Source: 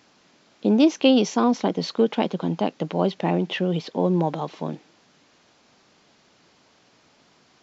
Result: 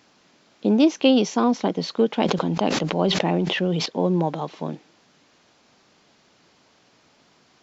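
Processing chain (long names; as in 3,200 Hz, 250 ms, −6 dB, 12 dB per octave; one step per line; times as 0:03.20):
0:02.14–0:03.86: level that may fall only so fast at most 24 dB per second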